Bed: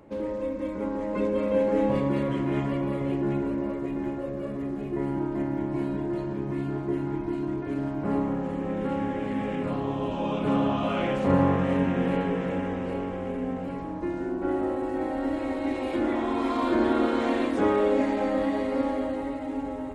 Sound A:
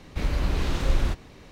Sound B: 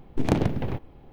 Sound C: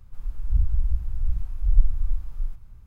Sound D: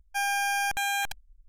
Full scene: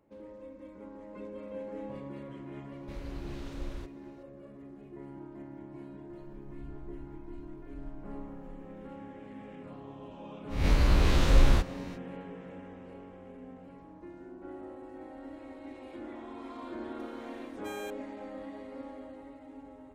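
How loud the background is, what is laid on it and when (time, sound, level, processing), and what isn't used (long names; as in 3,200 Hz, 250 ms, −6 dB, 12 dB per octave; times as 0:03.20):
bed −17 dB
0:02.72: mix in A −17 dB
0:06.09: mix in C −12.5 dB + downward compressor 2 to 1, threshold −40 dBFS
0:10.48: mix in A, fades 0.05 s + peak hold with a rise ahead of every peak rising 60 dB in 0.53 s
0:16.85: mix in D −16.5 dB + saturating transformer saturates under 580 Hz
not used: B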